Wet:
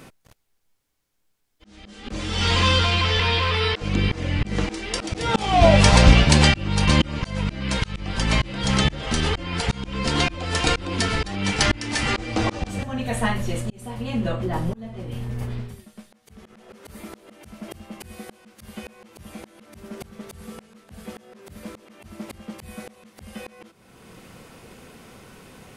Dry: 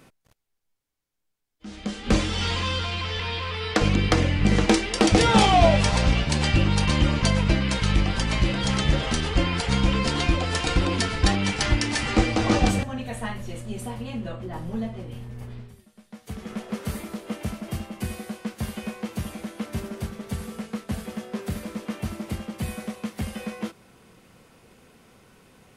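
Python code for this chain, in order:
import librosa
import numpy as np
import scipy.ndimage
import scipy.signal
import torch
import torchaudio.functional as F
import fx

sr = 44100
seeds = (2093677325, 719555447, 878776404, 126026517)

y = fx.auto_swell(x, sr, attack_ms=561.0)
y = F.gain(torch.from_numpy(y), 8.5).numpy()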